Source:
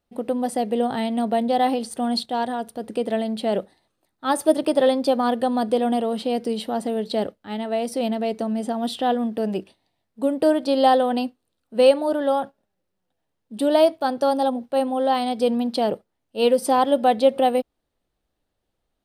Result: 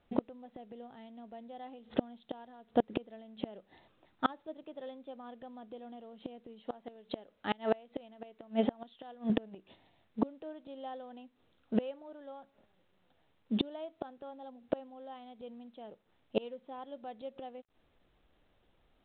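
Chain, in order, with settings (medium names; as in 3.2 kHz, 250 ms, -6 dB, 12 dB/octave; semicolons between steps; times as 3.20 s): 6.62–9.30 s: bass shelf 270 Hz -10.5 dB; inverted gate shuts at -20 dBFS, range -32 dB; trim +5 dB; µ-law 64 kbps 8 kHz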